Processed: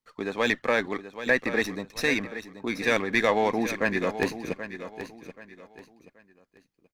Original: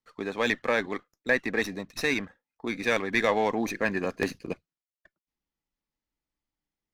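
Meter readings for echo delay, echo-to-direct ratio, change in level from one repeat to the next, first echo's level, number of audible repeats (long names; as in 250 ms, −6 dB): 780 ms, −11.0 dB, −10.0 dB, −11.5 dB, 3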